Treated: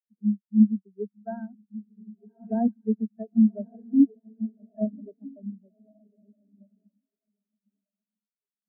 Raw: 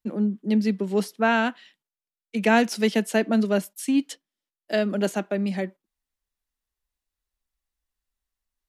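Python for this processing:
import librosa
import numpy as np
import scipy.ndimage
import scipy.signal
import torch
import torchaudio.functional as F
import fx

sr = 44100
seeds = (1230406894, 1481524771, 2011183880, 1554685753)

p1 = fx.high_shelf(x, sr, hz=2800.0, db=-5.5)
p2 = fx.dispersion(p1, sr, late='lows', ms=50.0, hz=2200.0)
p3 = p2 + fx.echo_diffused(p2, sr, ms=1177, feedback_pct=51, wet_db=-3.0, dry=0)
y = fx.spectral_expand(p3, sr, expansion=4.0)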